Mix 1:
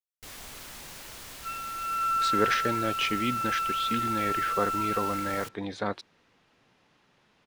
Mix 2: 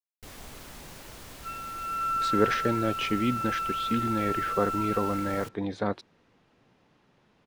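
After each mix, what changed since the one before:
master: add tilt shelving filter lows +4.5 dB, about 920 Hz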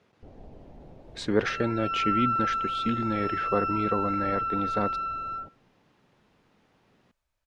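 speech: entry −1.05 s
first sound: add Butterworth low-pass 780 Hz 36 dB per octave
second sound: remove high-frequency loss of the air 280 metres

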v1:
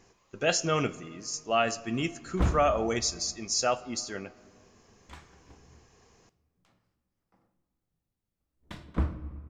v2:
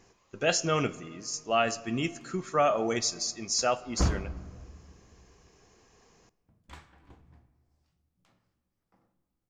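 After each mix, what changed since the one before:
background: entry +1.60 s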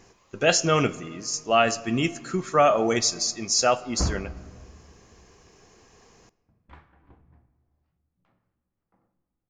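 speech +6.0 dB
background: add low-pass filter 2,000 Hz 12 dB per octave

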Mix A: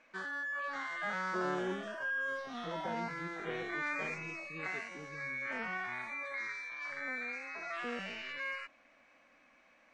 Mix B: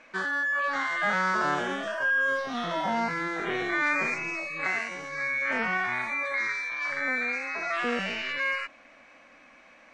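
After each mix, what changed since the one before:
background +11.0 dB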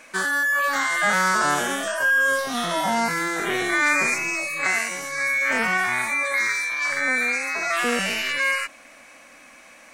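background +4.5 dB
master: remove high-frequency loss of the air 180 metres

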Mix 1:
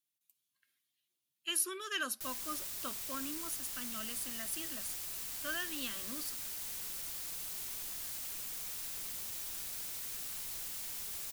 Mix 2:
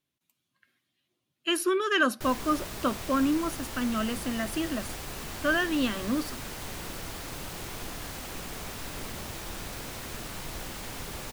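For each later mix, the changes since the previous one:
master: remove first-order pre-emphasis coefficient 0.9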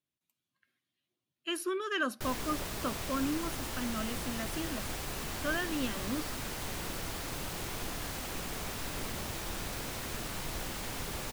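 speech −8.0 dB

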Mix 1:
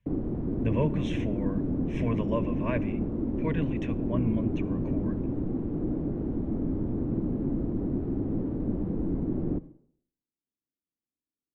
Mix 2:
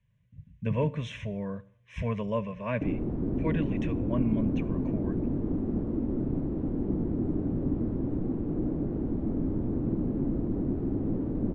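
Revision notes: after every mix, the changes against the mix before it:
background: entry +2.75 s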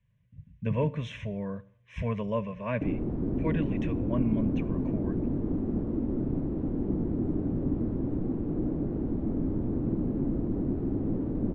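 speech: add high-shelf EQ 5,600 Hz −5.5 dB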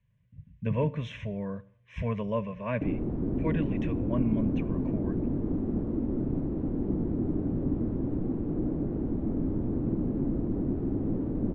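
master: add high-shelf EQ 9,500 Hz −11.5 dB

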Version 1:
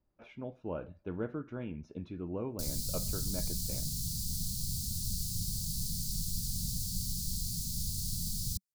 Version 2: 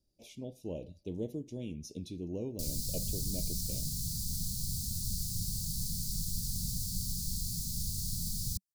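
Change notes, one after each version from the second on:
speech: remove low-pass filter 1,800 Hz 12 dB per octave
master: add Butterworth band-reject 1,400 Hz, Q 0.5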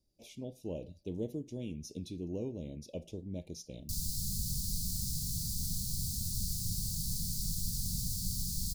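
background: entry +1.30 s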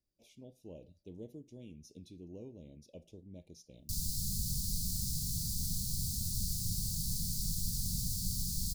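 speech −10.0 dB

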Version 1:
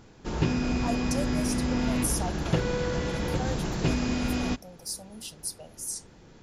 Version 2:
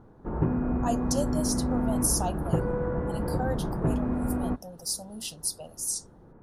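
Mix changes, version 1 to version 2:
speech +4.0 dB
background: add low-pass filter 1,300 Hz 24 dB per octave

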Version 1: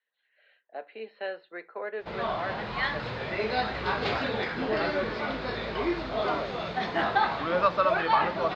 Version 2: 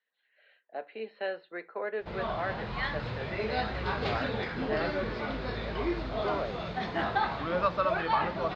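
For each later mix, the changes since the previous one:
background −4.5 dB
master: add low-shelf EQ 150 Hz +11 dB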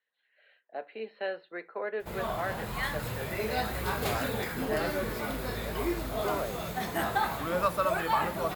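background: remove Butterworth low-pass 4,800 Hz 36 dB per octave

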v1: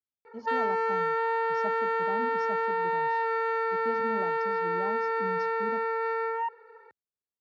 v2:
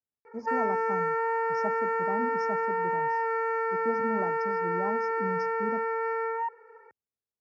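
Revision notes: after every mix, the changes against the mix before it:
speech +4.0 dB
master: add Chebyshev band-stop filter 2,500–5,000 Hz, order 3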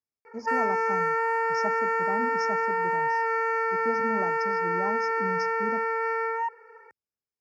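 master: add high-shelf EQ 2,100 Hz +12 dB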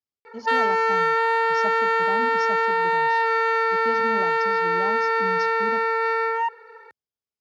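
background +4.5 dB
master: remove Chebyshev band-stop filter 2,500–5,000 Hz, order 3

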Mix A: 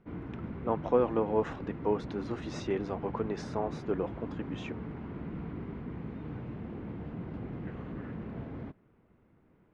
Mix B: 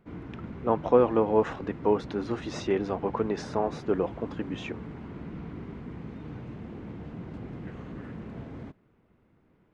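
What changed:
speech +5.5 dB
background: remove Bessel low-pass filter 2,800 Hz, order 2

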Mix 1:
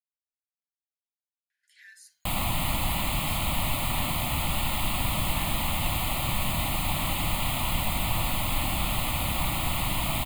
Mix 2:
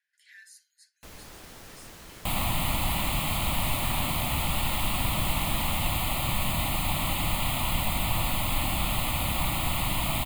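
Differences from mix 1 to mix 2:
speech: entry −1.50 s
first sound: unmuted

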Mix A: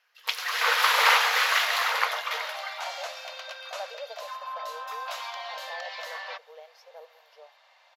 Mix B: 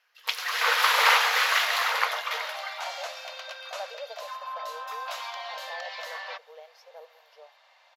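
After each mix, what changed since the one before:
nothing changed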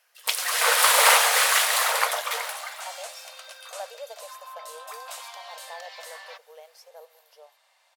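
first sound: add parametric band 610 Hz +9.5 dB 0.68 octaves
second sound −6.5 dB
master: remove moving average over 5 samples

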